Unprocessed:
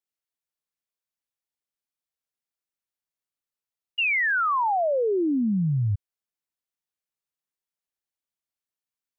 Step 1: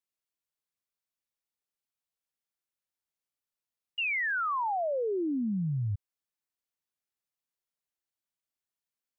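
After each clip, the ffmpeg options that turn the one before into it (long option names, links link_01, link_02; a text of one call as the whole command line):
ffmpeg -i in.wav -af "alimiter=level_in=1dB:limit=-24dB:level=0:latency=1,volume=-1dB,volume=-2dB" out.wav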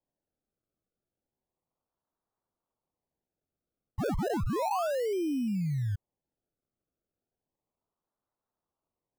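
ffmpeg -i in.wav -af "acrusher=samples=31:mix=1:aa=0.000001:lfo=1:lforange=31:lforate=0.33,highshelf=frequency=1500:width_type=q:width=1.5:gain=-7.5" out.wav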